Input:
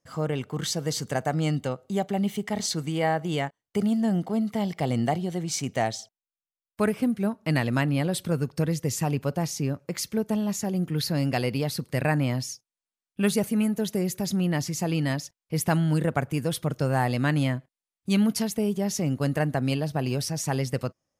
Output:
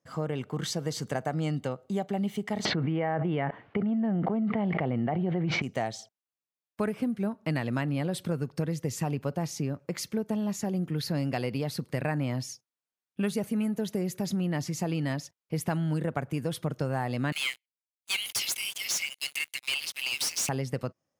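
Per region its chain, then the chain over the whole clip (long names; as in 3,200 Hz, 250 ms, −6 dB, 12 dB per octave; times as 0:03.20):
0:02.65–0:05.62: low-pass filter 2,500 Hz 24 dB per octave + envelope flattener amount 100%
0:17.32–0:20.49: Chebyshev high-pass with heavy ripple 2,100 Hz, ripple 3 dB + leveller curve on the samples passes 5
whole clip: high-pass filter 92 Hz; high-shelf EQ 3,800 Hz −6.5 dB; downward compressor 3 to 1, threshold −27 dBFS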